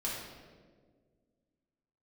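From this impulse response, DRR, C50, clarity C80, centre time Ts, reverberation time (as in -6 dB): -6.5 dB, 0.0 dB, 3.0 dB, 78 ms, 1.7 s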